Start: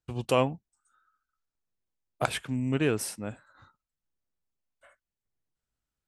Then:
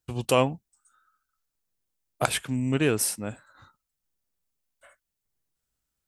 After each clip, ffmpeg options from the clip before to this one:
-af "highshelf=f=5.7k:g=9,volume=2.5dB"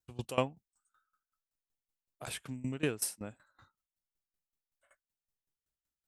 -af "aeval=exprs='val(0)*pow(10,-19*if(lt(mod(5.3*n/s,1),2*abs(5.3)/1000),1-mod(5.3*n/s,1)/(2*abs(5.3)/1000),(mod(5.3*n/s,1)-2*abs(5.3)/1000)/(1-2*abs(5.3)/1000))/20)':c=same,volume=-5dB"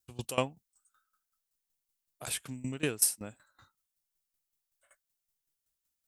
-af "highshelf=f=4.2k:g=10.5"

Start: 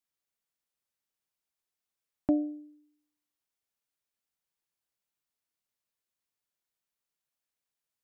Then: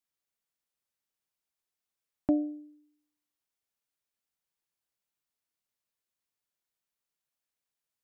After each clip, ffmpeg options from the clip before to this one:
-af anull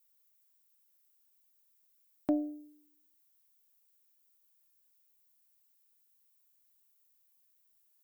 -af "aemphasis=mode=production:type=bsi,aeval=exprs='0.119*(cos(1*acos(clip(val(0)/0.119,-1,1)))-cos(1*PI/2))+0.00119*(cos(4*acos(clip(val(0)/0.119,-1,1)))-cos(4*PI/2))':c=same"

